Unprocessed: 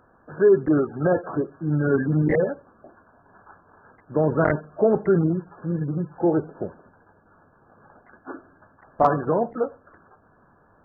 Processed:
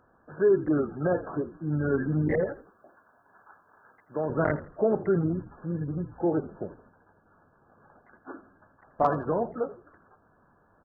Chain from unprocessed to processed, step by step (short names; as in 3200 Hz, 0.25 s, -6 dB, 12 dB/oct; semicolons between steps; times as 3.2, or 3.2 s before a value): 2.46–4.3 tilt +3 dB/oct; on a send: frequency-shifting echo 82 ms, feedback 33%, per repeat -59 Hz, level -16 dB; on the sum: gain -5.5 dB